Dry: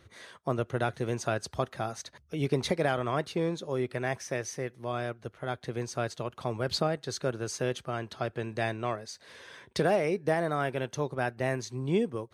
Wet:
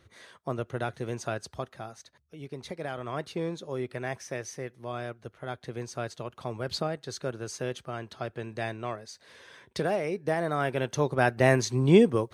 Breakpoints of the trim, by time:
1.32 s -2.5 dB
2.49 s -13 dB
3.28 s -2.5 dB
10.11 s -2.5 dB
11.49 s +9 dB

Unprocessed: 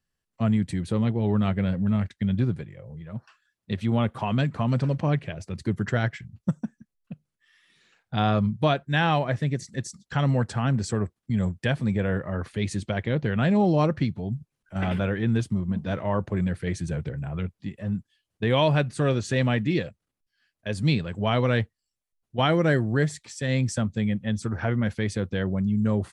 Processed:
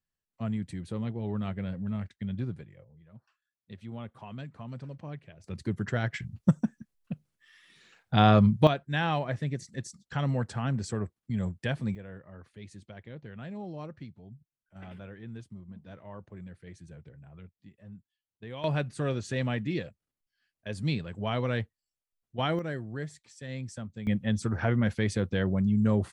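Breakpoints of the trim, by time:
-9.5 dB
from 2.84 s -17 dB
from 5.44 s -5 dB
from 6.14 s +3 dB
from 8.67 s -6 dB
from 11.95 s -19 dB
from 18.64 s -7 dB
from 22.59 s -13.5 dB
from 24.07 s -1 dB

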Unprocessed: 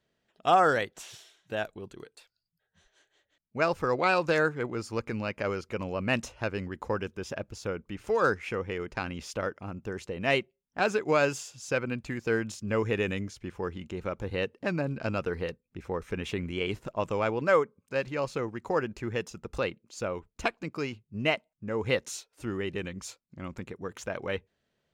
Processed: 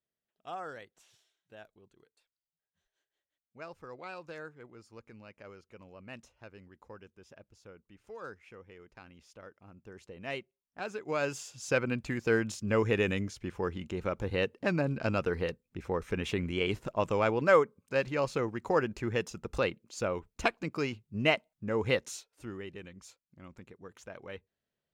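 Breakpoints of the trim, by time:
9.39 s -19 dB
10.09 s -12 dB
10.92 s -12 dB
11.64 s +0.5 dB
21.78 s +0.5 dB
22.79 s -11.5 dB

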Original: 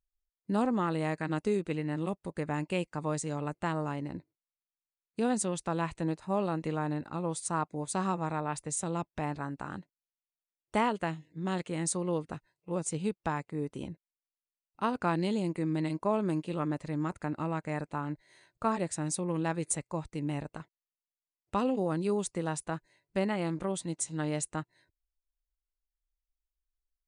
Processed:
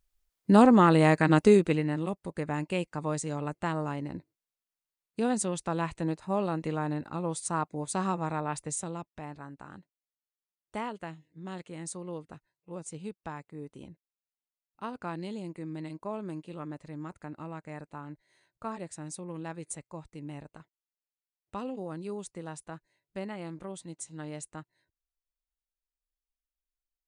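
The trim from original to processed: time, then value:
1.53 s +10.5 dB
2.04 s +1 dB
8.69 s +1 dB
9.09 s -7.5 dB

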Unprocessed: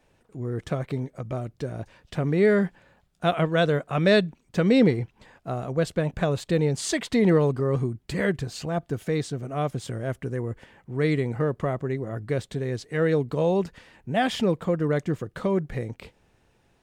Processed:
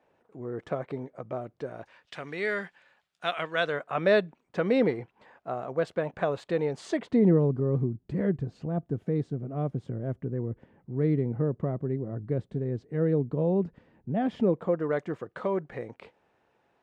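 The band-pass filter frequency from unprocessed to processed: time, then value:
band-pass filter, Q 0.67
1.57 s 710 Hz
2.17 s 2.5 kHz
3.41 s 2.5 kHz
4.07 s 870 Hz
6.72 s 870 Hz
7.34 s 200 Hz
14.25 s 200 Hz
14.87 s 870 Hz

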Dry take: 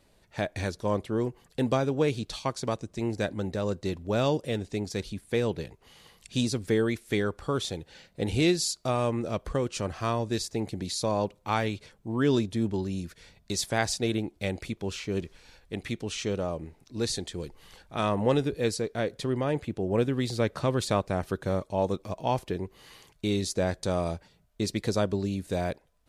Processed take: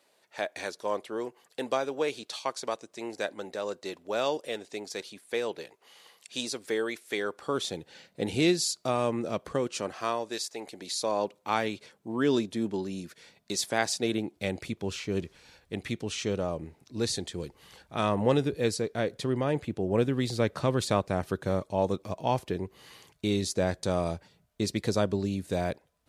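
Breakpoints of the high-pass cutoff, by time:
7.17 s 460 Hz
7.75 s 160 Hz
9.51 s 160 Hz
10.52 s 610 Hz
11.54 s 210 Hz
13.87 s 210 Hz
14.91 s 74 Hz

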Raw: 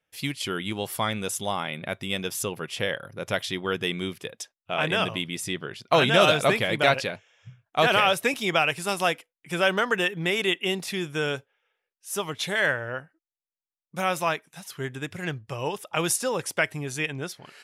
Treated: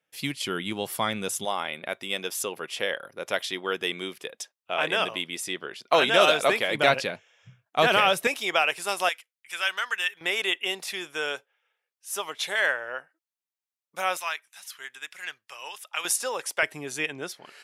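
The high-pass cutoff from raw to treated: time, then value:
150 Hz
from 1.45 s 340 Hz
from 6.75 s 160 Hz
from 8.27 s 460 Hz
from 9.09 s 1.5 kHz
from 10.21 s 550 Hz
from 14.17 s 1.4 kHz
from 16.05 s 580 Hz
from 16.63 s 280 Hz

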